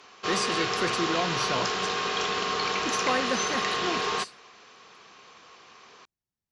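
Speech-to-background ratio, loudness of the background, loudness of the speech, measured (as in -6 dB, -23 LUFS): -4.5 dB, -27.5 LUFS, -32.0 LUFS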